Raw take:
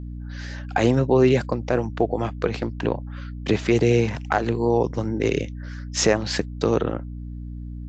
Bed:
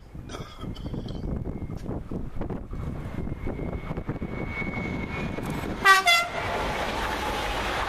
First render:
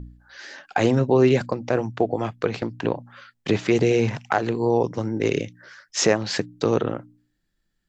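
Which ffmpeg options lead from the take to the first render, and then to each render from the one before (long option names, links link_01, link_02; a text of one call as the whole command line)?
ffmpeg -i in.wav -af "bandreject=frequency=60:width_type=h:width=4,bandreject=frequency=120:width_type=h:width=4,bandreject=frequency=180:width_type=h:width=4,bandreject=frequency=240:width_type=h:width=4,bandreject=frequency=300:width_type=h:width=4" out.wav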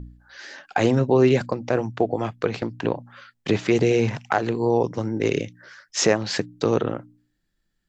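ffmpeg -i in.wav -af anull out.wav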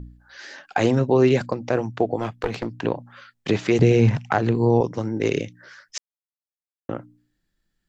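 ffmpeg -i in.wav -filter_complex "[0:a]asettb=1/sr,asplit=3[link_01][link_02][link_03];[link_01]atrim=end=2.194[link_04];[link_02]atrim=start=2.19:end=2.66,asetpts=PTS-STARTPTS,afade=type=in:duration=0.004:curve=qsin,afade=type=out:start_time=0.466:duration=0.004:curve=qsin,aeval=exprs='clip(val(0),-1,0.0668)':channel_layout=same[link_05];[link_03]atrim=start=2.656[link_06];[link_04][link_05]acrossfade=duration=0.004:curve1=hsin:curve2=qsin[link_07];[link_07][link_06]acrossfade=duration=0.004:curve1=qsin:curve2=hsin,asettb=1/sr,asplit=3[link_08][link_09][link_10];[link_08]atrim=end=3.794[link_11];[link_09]atrim=start=3.79:end=4.81,asetpts=PTS-STARTPTS,afade=type=in:duration=0.004:curve=qsin,afade=type=out:start_time=1.016:duration=0.004:curve=qsin,bass=frequency=250:gain=9,treble=frequency=4000:gain=-3[link_12];[link_10]atrim=start=4.806[link_13];[link_11][link_12]acrossfade=duration=0.004:curve1=hsin:curve2=qsin[link_14];[link_14][link_13]acrossfade=duration=0.004:curve1=qsin:curve2=hsin,asplit=3[link_15][link_16][link_17];[link_15]atrim=end=5.98,asetpts=PTS-STARTPTS,afade=type=out:start_time=5.976:duration=0.004:curve=hsin[link_18];[link_16]atrim=start=5.98:end=6.89,asetpts=PTS-STARTPTS,volume=0[link_19];[link_17]atrim=start=6.89,asetpts=PTS-STARTPTS,afade=type=in:duration=0.004:curve=hsin[link_20];[link_18][link_19][link_20]concat=n=3:v=0:a=1" out.wav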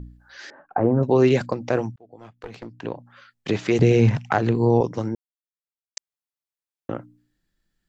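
ffmpeg -i in.wav -filter_complex "[0:a]asettb=1/sr,asplit=3[link_01][link_02][link_03];[link_01]atrim=end=0.504[link_04];[link_02]atrim=start=0.5:end=1.03,asetpts=PTS-STARTPTS,afade=type=in:duration=0.004:curve=qsin,afade=type=out:start_time=0.526:duration=0.004:curve=qsin,lowpass=frequency=1200:width=0.5412,lowpass=frequency=1200:width=1.3066[link_05];[link_03]atrim=start=1.026[link_06];[link_04][link_05]acrossfade=duration=0.004:curve1=hsin:curve2=qsin[link_07];[link_07][link_06]acrossfade=duration=0.004:curve1=qsin:curve2=hsin,asplit=4[link_08][link_09][link_10][link_11];[link_08]atrim=end=1.96,asetpts=PTS-STARTPTS,afade=type=out:start_time=1.956:duration=0.004:curve=hsin[link_12];[link_09]atrim=start=1.96:end=5.15,asetpts=PTS-STARTPTS,afade=type=in:duration=2,afade=type=out:start_time=3.186:duration=0.004:curve=hsin[link_13];[link_10]atrim=start=5.15:end=5.97,asetpts=PTS-STARTPTS,volume=0[link_14];[link_11]atrim=start=5.97,asetpts=PTS-STARTPTS,afade=type=in:duration=0.004:curve=hsin[link_15];[link_12][link_13][link_14][link_15]concat=n=4:v=0:a=1" out.wav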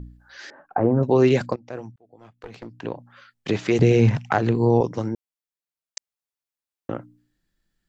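ffmpeg -i in.wav -filter_complex "[0:a]asplit=2[link_01][link_02];[link_01]atrim=end=1.56,asetpts=PTS-STARTPTS,afade=type=out:start_time=1.556:duration=0.004:curve=hsin:silence=0.112202[link_03];[link_02]atrim=start=1.56,asetpts=PTS-STARTPTS,afade=type=in:duration=1.21:silence=0.112202[link_04];[link_03][link_04]concat=n=2:v=0:a=1" out.wav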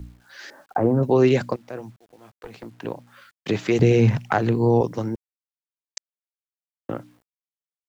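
ffmpeg -i in.wav -filter_complex "[0:a]acrossover=split=100[link_01][link_02];[link_01]aeval=exprs='sgn(val(0))*max(abs(val(0))-0.00106,0)':channel_layout=same[link_03];[link_03][link_02]amix=inputs=2:normalize=0,acrusher=bits=9:mix=0:aa=0.000001" out.wav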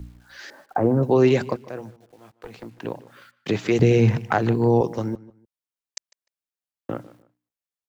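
ffmpeg -i in.wav -filter_complex "[0:a]asplit=2[link_01][link_02];[link_02]adelay=150,lowpass=frequency=3100:poles=1,volume=-18.5dB,asplit=2[link_03][link_04];[link_04]adelay=150,lowpass=frequency=3100:poles=1,volume=0.26[link_05];[link_01][link_03][link_05]amix=inputs=3:normalize=0" out.wav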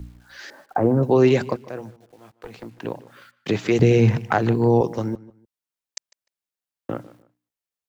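ffmpeg -i in.wav -af "volume=1dB" out.wav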